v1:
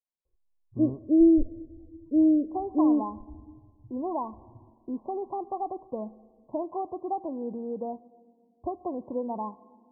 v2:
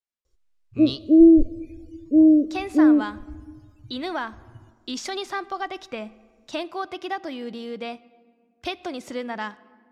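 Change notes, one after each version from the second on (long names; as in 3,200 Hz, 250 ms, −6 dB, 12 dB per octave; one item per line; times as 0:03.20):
background +5.5 dB
master: remove Chebyshev low-pass filter 1,100 Hz, order 10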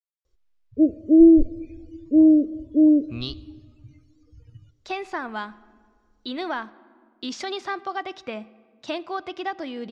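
speech: entry +2.35 s
master: add low-pass filter 5,600 Hz 12 dB per octave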